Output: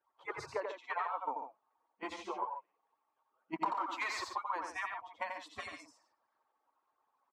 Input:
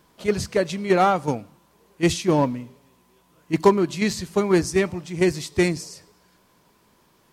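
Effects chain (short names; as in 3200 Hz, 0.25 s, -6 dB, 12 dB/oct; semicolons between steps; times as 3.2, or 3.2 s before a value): median-filter separation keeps percussive; spectral noise reduction 12 dB; 3.6–4.31 sample leveller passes 5; band-pass 1000 Hz, Q 4.7; compressor 6:1, threshold -42 dBFS, peak gain reduction 22.5 dB; loudspeakers at several distances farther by 30 m -5 dB, 49 m -10 dB; 2.03–2.53 ensemble effect; gain +7.5 dB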